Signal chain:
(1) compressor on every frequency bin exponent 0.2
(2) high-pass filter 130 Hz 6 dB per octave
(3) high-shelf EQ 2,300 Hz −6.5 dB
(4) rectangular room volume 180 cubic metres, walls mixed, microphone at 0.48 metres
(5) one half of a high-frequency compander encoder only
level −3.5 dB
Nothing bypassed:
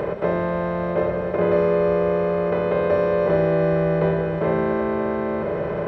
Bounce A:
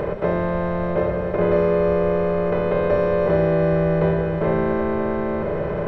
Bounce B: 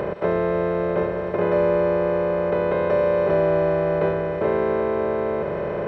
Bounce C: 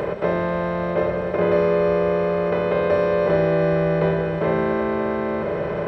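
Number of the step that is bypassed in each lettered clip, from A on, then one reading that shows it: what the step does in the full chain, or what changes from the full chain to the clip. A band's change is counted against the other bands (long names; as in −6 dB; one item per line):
2, 125 Hz band +2.0 dB
4, 125 Hz band −3.5 dB
3, 2 kHz band +2.0 dB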